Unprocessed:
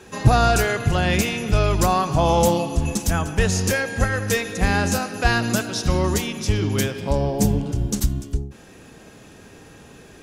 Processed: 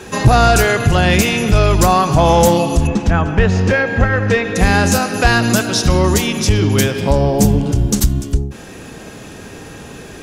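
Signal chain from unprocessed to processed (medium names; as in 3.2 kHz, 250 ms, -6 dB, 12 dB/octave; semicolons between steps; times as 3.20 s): 2.87–4.56 s: low-pass 2.5 kHz 12 dB/octave; in parallel at +1 dB: compression, threshold -25 dBFS, peak gain reduction 16 dB; on the sum: saturation -5.5 dBFS, distortion -22 dB; trim +5 dB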